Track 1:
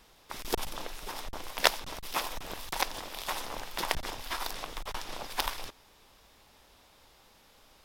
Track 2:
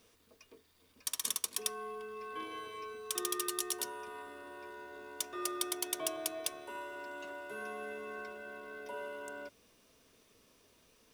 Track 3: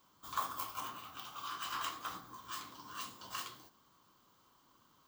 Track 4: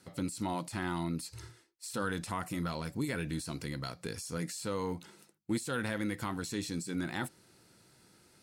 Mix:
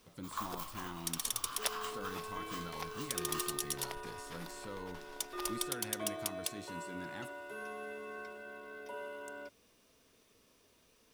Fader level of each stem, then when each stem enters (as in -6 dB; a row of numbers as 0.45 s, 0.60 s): -16.0 dB, -1.5 dB, -3.5 dB, -11.0 dB; 0.00 s, 0.00 s, 0.00 s, 0.00 s